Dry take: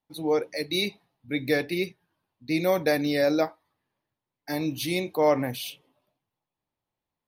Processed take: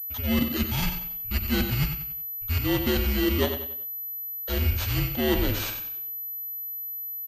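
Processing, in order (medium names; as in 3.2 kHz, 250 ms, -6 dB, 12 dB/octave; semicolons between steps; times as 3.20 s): bit-reversed sample order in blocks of 16 samples; reverse; compression 6:1, threshold -30 dBFS, peak gain reduction 13 dB; reverse; feedback delay 93 ms, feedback 39%, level -8.5 dB; frequency shift -230 Hz; class-D stage that switches slowly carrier 12 kHz; trim +8.5 dB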